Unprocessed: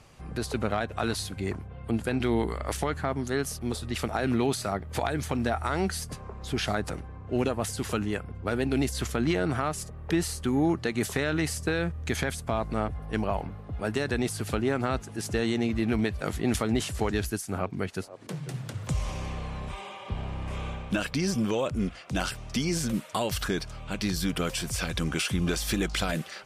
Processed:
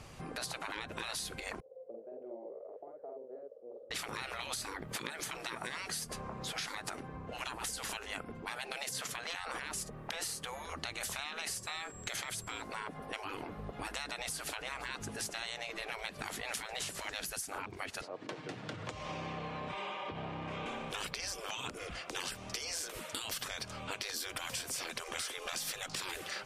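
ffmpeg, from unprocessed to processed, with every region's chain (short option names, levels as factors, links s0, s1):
-filter_complex "[0:a]asettb=1/sr,asplit=3[s0][s1][s2];[s0]atrim=end=1.604[s3];[s1]atrim=start=1.6:end=3.91,asetpts=PTS-STARTPTS,afade=t=in:d=0.004:c=qsin,afade=t=out:st=2.306:d=0.004:c=qsin,asuperpass=centerf=520:order=4:qfactor=5.1,asplit=2[s4][s5];[s5]adelay=48,volume=0.794[s6];[s4][s6]amix=inputs=2:normalize=0,atrim=end_sample=101871[s7];[s2]atrim=start=3.906[s8];[s3][s7]acrossfade=d=0.004:c1=hsin:c2=qsin[s9];[s9][s8]acrossfade=d=0.004:c1=qsin:c2=hsin,asettb=1/sr,asplit=3[s10][s11][s12];[s10]atrim=end=11.474[s13];[s11]atrim=start=11.47:end=12.62,asetpts=PTS-STARTPTS,afade=t=in:d=0.004:c=qsin,afade=t=out:st=1.146:d=0.004:c=qsin,afreqshift=-44,aeval=exprs='val(0)+0.002*sin(2*PI*7600*n/s)':c=same[s14];[s12]atrim=start=12.616[s15];[s13][s14]acrossfade=d=0.004:c1=hsin:c2=qsin[s16];[s16][s15]acrossfade=d=0.004:c1=qsin:c2=hsin,asettb=1/sr,asplit=3[s17][s18][s19];[s17]atrim=end=18.014[s20];[s18]atrim=start=18.01:end=20.66,asetpts=PTS-STARTPTS,afade=t=in:d=0.004:c=qsin,afade=t=out:st=2.646:d=0.004:c=qsin,acompressor=threshold=0.02:ratio=2.5:attack=3.2:release=140:knee=1:detection=peak,highpass=190,lowpass=4100,aecho=1:1:6.5:0.31,atrim=end_sample=116865[s21];[s19]atrim=start=20.656[s22];[s20][s21]acrossfade=d=0.004:c1=hsin:c2=qsin[s23];[s23][s22]acrossfade=d=0.004:c1=qsin:c2=hsin,afftfilt=real='re*lt(hypot(re,im),0.0631)':imag='im*lt(hypot(re,im),0.0631)':win_size=1024:overlap=0.75,acompressor=threshold=0.0112:ratio=6,volume=1.41"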